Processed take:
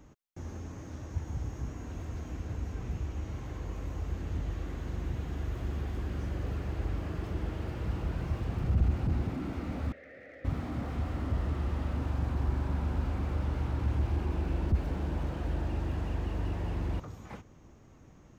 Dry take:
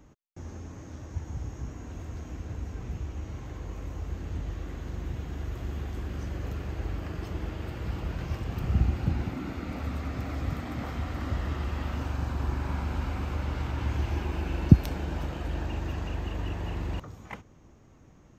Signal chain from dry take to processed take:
0:09.92–0:10.45: pair of resonant band-passes 1,000 Hz, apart 1.8 octaves
slew-rate limiting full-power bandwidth 7.9 Hz

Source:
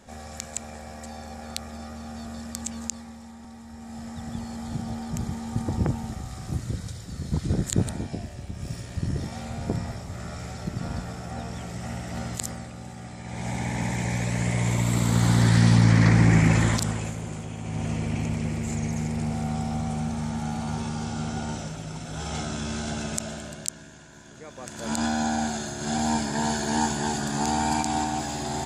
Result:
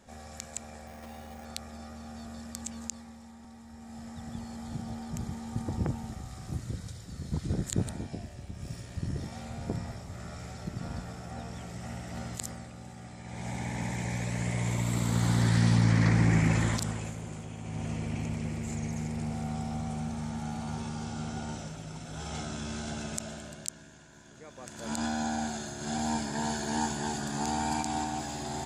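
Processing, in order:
0:00.87–0:01.45: bad sample-rate conversion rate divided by 6×, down none, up hold
level −6 dB

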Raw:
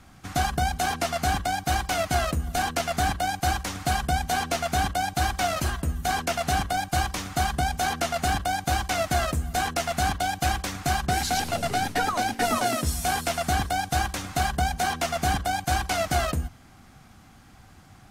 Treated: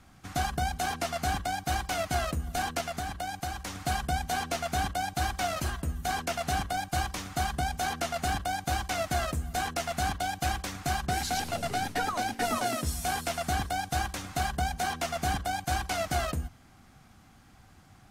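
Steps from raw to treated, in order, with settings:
0:02.80–0:03.79: downward compressor, threshold −26 dBFS, peak gain reduction 7 dB
level −5 dB

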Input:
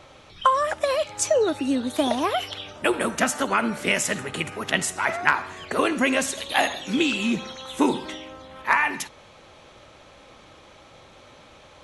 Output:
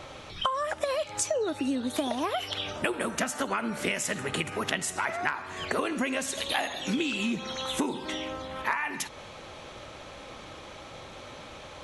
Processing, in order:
downward compressor 6 to 1, threshold −32 dBFS, peak gain reduction 17.5 dB
level +5 dB

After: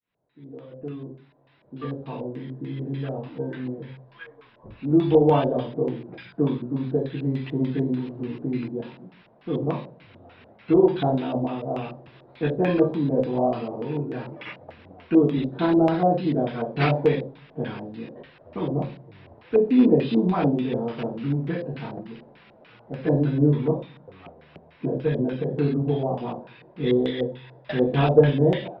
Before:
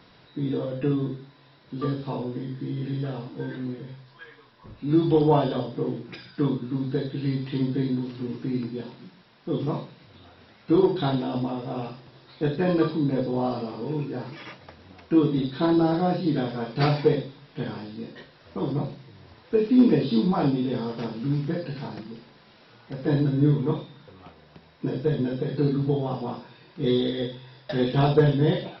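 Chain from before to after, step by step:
fade in at the beginning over 3.34 s
auto-filter low-pass square 3.4 Hz 650–2,600 Hz

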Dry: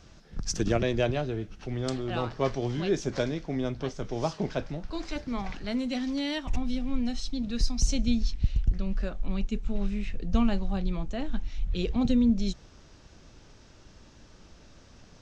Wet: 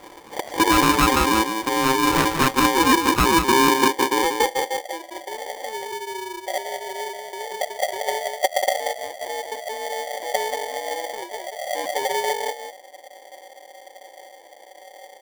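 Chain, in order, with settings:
adaptive Wiener filter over 41 samples
high-pass filter 81 Hz 12 dB per octave
parametric band 330 Hz +12 dB 0.57 octaves
in parallel at −1.5 dB: downward compressor, threshold −34 dBFS, peak gain reduction 18 dB
on the sum: low-pass filter sweep 1,200 Hz → 110 Hz, 0:02.64–0:04.85
harmonic generator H 5 −8 dB, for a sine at −4.5 dBFS
on a send: single-tap delay 184 ms −6.5 dB
on the sum: ring modulator with a square carrier 660 Hz
level −4.5 dB

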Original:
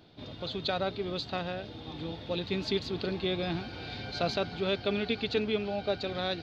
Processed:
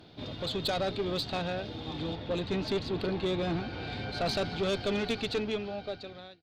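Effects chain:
fade-out on the ending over 1.61 s
tube saturation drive 29 dB, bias 0.3
0:02.15–0:04.26: high-shelf EQ 4,600 Hz −11.5 dB
level +5 dB

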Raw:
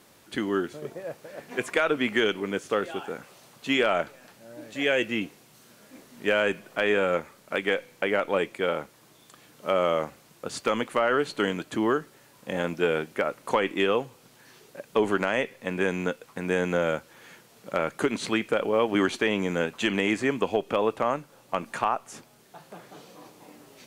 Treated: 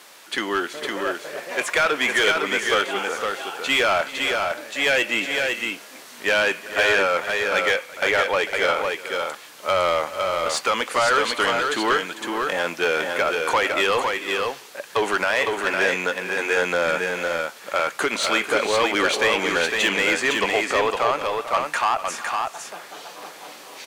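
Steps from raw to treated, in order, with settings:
high-pass filter 110 Hz
low-shelf EQ 420 Hz −10 dB
mid-hump overdrive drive 19 dB, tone 7,300 Hz, clips at −10.5 dBFS
on a send: multi-tap delay 369/447/508 ms −19/−13/−4 dB

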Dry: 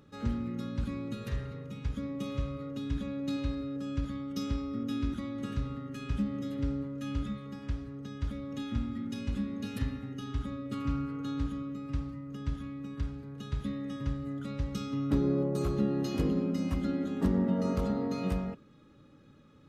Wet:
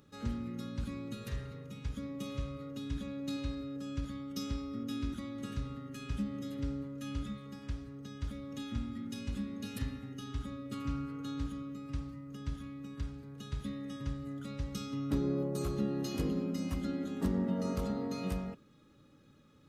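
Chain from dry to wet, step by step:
high-shelf EQ 4,400 Hz +9 dB
level −4.5 dB

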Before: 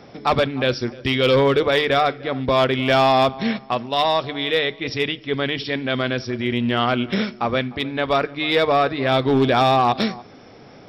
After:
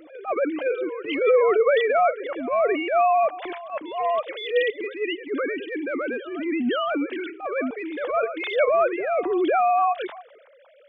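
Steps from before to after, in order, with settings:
three sine waves on the formant tracks
backwards echo 516 ms −17 dB
transient designer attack −12 dB, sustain +3 dB
level −1.5 dB

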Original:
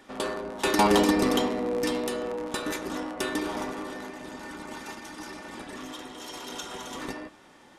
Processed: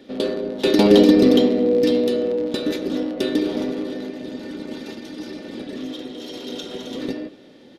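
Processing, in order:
graphic EQ with 10 bands 125 Hz +6 dB, 250 Hz +10 dB, 500 Hz +12 dB, 1,000 Hz −11 dB, 4,000 Hz +11 dB, 8,000 Hz −9 dB
far-end echo of a speakerphone 230 ms, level −22 dB
level −1 dB

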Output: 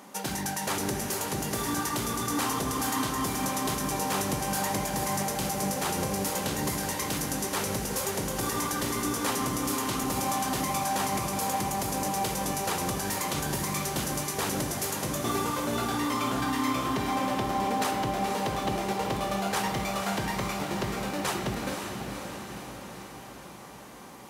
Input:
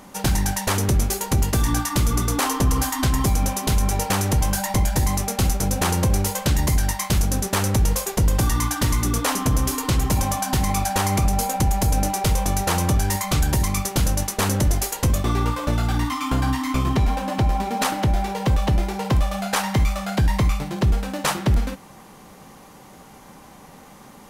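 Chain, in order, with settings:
high-pass filter 210 Hz 12 dB per octave
brickwall limiter −17 dBFS, peak gain reduction 7.5 dB
feedback delay with all-pass diffusion 514 ms, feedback 62%, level −5.5 dB
on a send at −10.5 dB: convolution reverb RT60 2.4 s, pre-delay 3 ms
on the sum: level −3.5 dB

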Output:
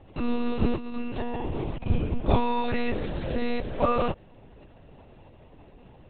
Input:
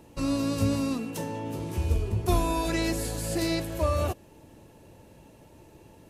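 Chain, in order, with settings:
0:00.75–0:01.87: compressor whose output falls as the input rises −31 dBFS, ratio −0.5
one-pitch LPC vocoder at 8 kHz 240 Hz
level +2 dB

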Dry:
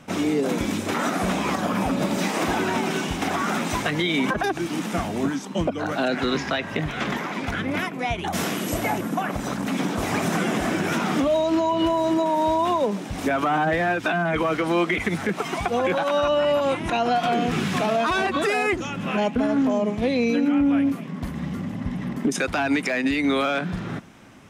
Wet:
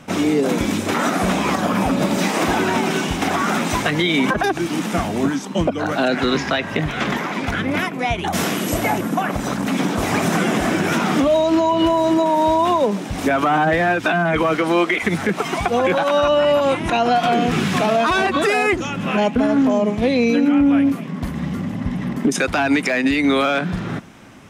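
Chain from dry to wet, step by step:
0:14.55–0:15.02: high-pass filter 110 Hz → 390 Hz 12 dB per octave
level +5 dB

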